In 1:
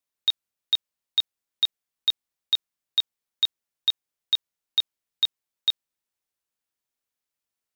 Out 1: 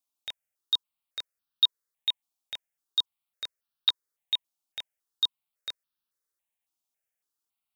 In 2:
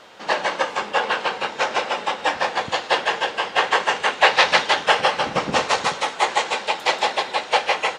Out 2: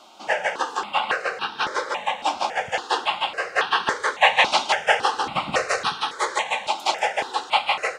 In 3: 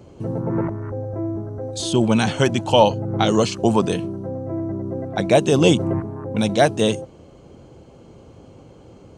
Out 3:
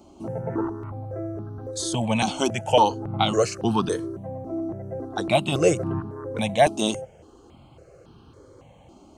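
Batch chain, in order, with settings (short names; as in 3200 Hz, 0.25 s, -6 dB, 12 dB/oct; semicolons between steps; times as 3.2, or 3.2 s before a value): low shelf 310 Hz -6 dB; notch 990 Hz, Q 19; step phaser 3.6 Hz 480–2100 Hz; gain +1.5 dB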